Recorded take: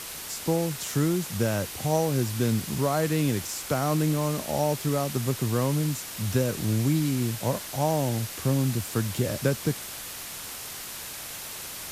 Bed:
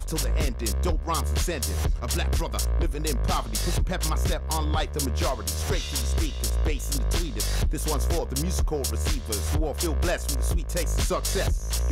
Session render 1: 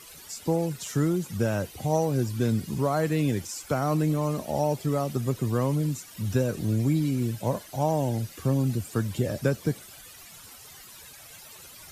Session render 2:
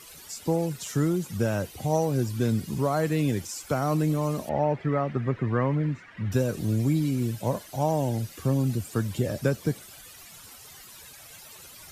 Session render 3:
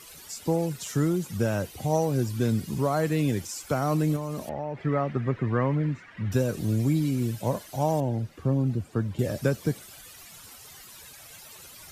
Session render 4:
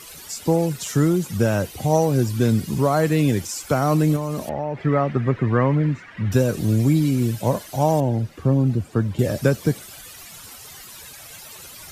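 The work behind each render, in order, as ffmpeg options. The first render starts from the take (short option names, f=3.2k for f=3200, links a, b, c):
-af "afftdn=nr=14:nf=-38"
-filter_complex "[0:a]asettb=1/sr,asplit=3[a][b][c];[a]atrim=end=4.494[d];[b]atrim=start=4.49:end=6.32,asetpts=PTS-STARTPTS,afade=t=in:d=0.004:c=qsin,afade=t=out:st=1.826:d=0.004:c=qsin,lowpass=f=1.9k:t=q:w=3[e];[c]atrim=start=6.316[f];[d][e]acrossfade=d=0.004:c1=hsin:c2=qsin[g];[g][f]acrossfade=d=0.004:c1=qsin:c2=hsin"
-filter_complex "[0:a]asettb=1/sr,asplit=3[a][b][c];[a]atrim=end=4.164[d];[b]atrim=start=4.16:end=4.85,asetpts=PTS-STARTPTS,afade=t=in:d=0.004:c=qsin,afade=t=out:st=0.686:d=0.004:c=qsin,acompressor=threshold=-28dB:ratio=6:attack=3.2:release=140:knee=1:detection=peak[e];[c]atrim=start=4.846[f];[d][e]acrossfade=d=0.004:c1=hsin:c2=qsin[g];[g][f]acrossfade=d=0.004:c1=qsin:c2=hsin,asettb=1/sr,asplit=3[h][i][j];[h]atrim=end=8.004[k];[i]atrim=start=8:end=9.19,asetpts=PTS-STARTPTS,afade=t=in:d=0.004:c=qsin,afade=t=out:st=1.186:d=0.004:c=qsin,lowpass=f=1.2k:p=1[l];[j]atrim=start=9.186[m];[k][l]acrossfade=d=0.004:c1=hsin:c2=qsin[n];[n][m]acrossfade=d=0.004:c1=qsin:c2=hsin"
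-af "volume=6.5dB"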